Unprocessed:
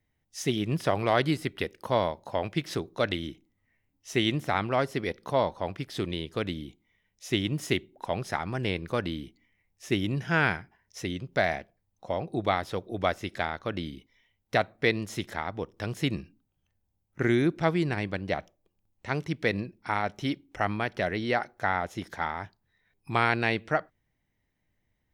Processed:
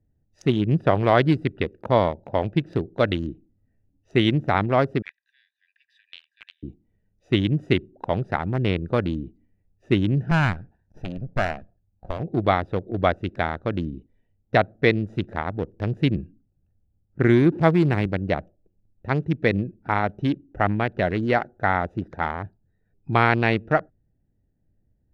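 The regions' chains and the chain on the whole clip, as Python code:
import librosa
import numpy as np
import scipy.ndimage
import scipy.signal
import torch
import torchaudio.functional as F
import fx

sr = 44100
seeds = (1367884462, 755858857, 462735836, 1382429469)

y = fx.chain(x, sr, fx.cheby1_highpass(hz=1600.0, order=10),
    fx.high_shelf(hz=5100.0, db=-6.0), at=(5.02, 6.63))
y = fx.chain(y, sr, fx.lower_of_two(delay_ms=1.2),
    fx.dynamic_eq(hz=430.0, q=1.1, threshold_db=-42.0, ratio=4.0, max_db=-4), at=(10.31, 12.2))
y = fx.chain(y, sr, fx.zero_step(step_db=-36.5),
    fx.highpass(hz=84.0, slope=12), at=(17.52, 18.06))
y = fx.wiener(y, sr, points=41)
y = fx.lowpass(y, sr, hz=2400.0, slope=6)
y = fx.low_shelf(y, sr, hz=140.0, db=4.0)
y = y * librosa.db_to_amplitude(7.0)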